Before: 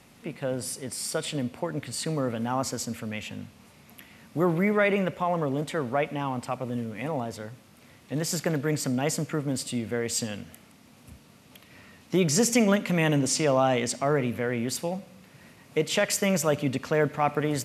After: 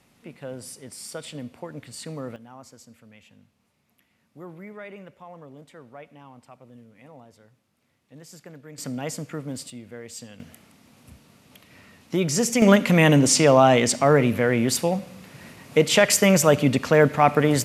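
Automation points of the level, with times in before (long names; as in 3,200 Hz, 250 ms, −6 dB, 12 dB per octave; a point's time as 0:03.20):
−6 dB
from 0:02.36 −17 dB
from 0:08.78 −4 dB
from 0:09.70 −10.5 dB
from 0:10.40 0 dB
from 0:12.62 +7.5 dB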